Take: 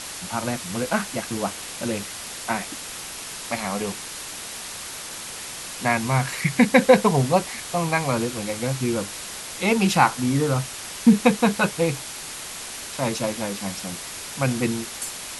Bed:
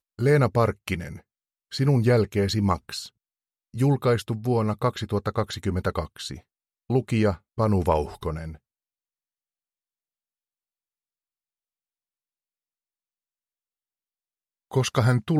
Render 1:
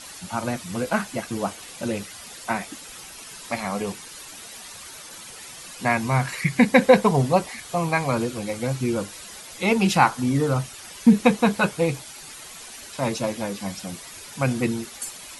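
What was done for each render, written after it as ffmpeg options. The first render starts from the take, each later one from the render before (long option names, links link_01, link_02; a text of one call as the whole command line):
ffmpeg -i in.wav -af "afftdn=noise_reduction=10:noise_floor=-36" out.wav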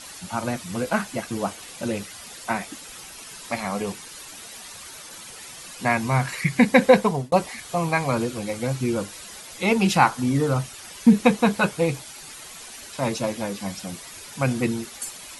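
ffmpeg -i in.wav -filter_complex "[0:a]asplit=2[link_01][link_02];[link_01]atrim=end=7.32,asetpts=PTS-STARTPTS,afade=type=out:start_time=6.86:duration=0.46:curve=qsin[link_03];[link_02]atrim=start=7.32,asetpts=PTS-STARTPTS,afade=type=in:duration=0.004:curve=hsin[link_04];[link_03][link_04]concat=n=2:v=0:a=1" out.wav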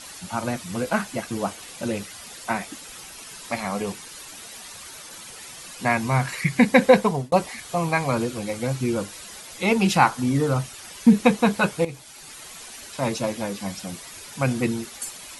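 ffmpeg -i in.wav -filter_complex "[0:a]asplit=2[link_01][link_02];[link_01]atrim=end=11.85,asetpts=PTS-STARTPTS,afade=type=out:start_time=11.846:duration=0.004:curve=hsin:silence=0.223872[link_03];[link_02]atrim=start=11.85,asetpts=PTS-STARTPTS,afade=type=in:duration=0.74:curve=qsin:silence=0.223872[link_04];[link_03][link_04]concat=n=2:v=0:a=1" out.wav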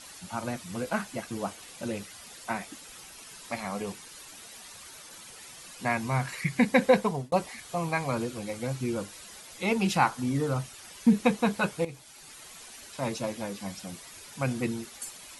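ffmpeg -i in.wav -af "volume=-6.5dB" out.wav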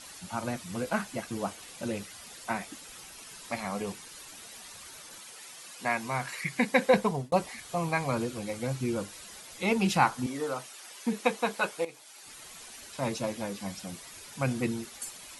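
ffmpeg -i in.wav -filter_complex "[0:a]asettb=1/sr,asplit=3[link_01][link_02][link_03];[link_01]atrim=end=5.194[link_04];[link_02]atrim=start=5.19:end=6.94,asetpts=PTS-STARTPTS,afade=type=in:duration=0.004:curve=qsin,afade=type=out:start_time=1.746:duration=0.004:curve=qsin,highpass=frequency=370:poles=1[link_05];[link_03]atrim=start=6.936[link_06];[link_04][link_05]acrossfade=duration=0.004:curve1=hsin:curve2=qsin[link_07];[link_07][link_06]acrossfade=duration=0.004:curve1=qsin:curve2=hsin,asettb=1/sr,asplit=3[link_08][link_09][link_10];[link_08]atrim=end=10.264[link_11];[link_09]atrim=start=10.26:end=12.26,asetpts=PTS-STARTPTS,afade=type=in:duration=0.004:curve=qsin,afade=type=out:start_time=1.996:duration=0.004:curve=qsin,highpass=390[link_12];[link_10]atrim=start=12.256[link_13];[link_11][link_12]acrossfade=duration=0.004:curve1=hsin:curve2=qsin[link_14];[link_14][link_13]acrossfade=duration=0.004:curve1=qsin:curve2=hsin" out.wav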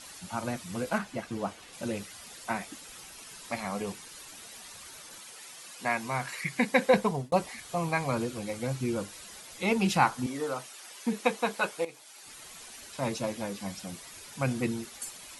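ffmpeg -i in.wav -filter_complex "[0:a]asettb=1/sr,asplit=3[link_01][link_02][link_03];[link_01]atrim=end=0.984[link_04];[link_02]atrim=start=0.98:end=1.73,asetpts=PTS-STARTPTS,afade=type=in:duration=0.004:curve=qsin,afade=type=out:start_time=0.746:duration=0.004:curve=qsin,lowpass=frequency=4000:poles=1[link_05];[link_03]atrim=start=1.726[link_06];[link_04][link_05]acrossfade=duration=0.004:curve1=hsin:curve2=qsin[link_07];[link_07][link_06]acrossfade=duration=0.004:curve1=qsin:curve2=hsin" out.wav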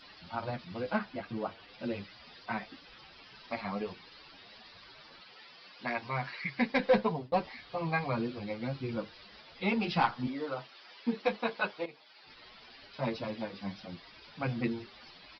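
ffmpeg -i in.wav -filter_complex "[0:a]aresample=11025,volume=17dB,asoftclip=hard,volume=-17dB,aresample=44100,asplit=2[link_01][link_02];[link_02]adelay=8.2,afreqshift=2.5[link_03];[link_01][link_03]amix=inputs=2:normalize=1" out.wav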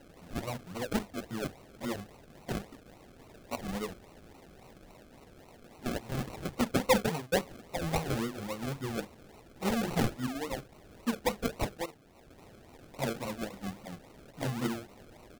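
ffmpeg -i in.wav -af "acrusher=samples=37:mix=1:aa=0.000001:lfo=1:lforange=22.2:lforate=3.6" out.wav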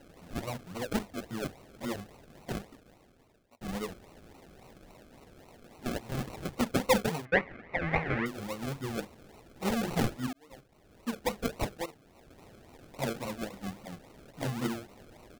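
ffmpeg -i in.wav -filter_complex "[0:a]asettb=1/sr,asplit=3[link_01][link_02][link_03];[link_01]atrim=end=7.254[link_04];[link_02]atrim=start=7.25:end=8.26,asetpts=PTS-STARTPTS,afade=type=in:duration=0.004:curve=qsin,afade=type=out:start_time=1.006:duration=0.004:curve=qsin,lowpass=frequency=2000:width_type=q:width=4.6[link_05];[link_03]atrim=start=8.256[link_06];[link_04][link_05]acrossfade=duration=0.004:curve1=hsin:curve2=qsin[link_07];[link_07][link_06]acrossfade=duration=0.004:curve1=qsin:curve2=hsin,asplit=3[link_08][link_09][link_10];[link_08]atrim=end=3.61,asetpts=PTS-STARTPTS,afade=type=out:start_time=2.4:duration=1.21[link_11];[link_09]atrim=start=3.61:end=10.33,asetpts=PTS-STARTPTS,afade=type=in:duration=0.004:curve=hsin,afade=type=out:start_time=6.716:duration=0.004:curve=hsin[link_12];[link_10]atrim=start=10.33,asetpts=PTS-STARTPTS,afade=type=in:duration=1.11[link_13];[link_11][link_12][link_13]concat=n=3:v=0:a=1" out.wav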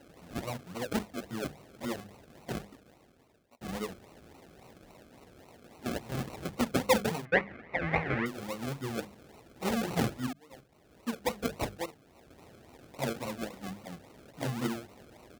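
ffmpeg -i in.wav -af "highpass=49,bandreject=frequency=50:width_type=h:width=6,bandreject=frequency=100:width_type=h:width=6,bandreject=frequency=150:width_type=h:width=6,bandreject=frequency=200:width_type=h:width=6" out.wav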